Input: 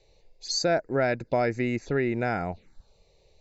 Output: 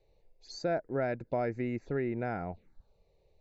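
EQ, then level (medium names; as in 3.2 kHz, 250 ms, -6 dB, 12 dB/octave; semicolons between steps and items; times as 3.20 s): low-pass 1.3 kHz 6 dB/octave; -6.0 dB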